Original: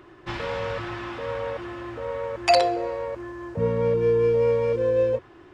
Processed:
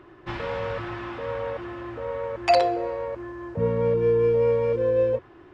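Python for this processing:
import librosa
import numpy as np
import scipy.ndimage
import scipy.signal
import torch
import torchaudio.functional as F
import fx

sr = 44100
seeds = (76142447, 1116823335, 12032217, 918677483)

y = fx.high_shelf(x, sr, hz=4500.0, db=-11.0)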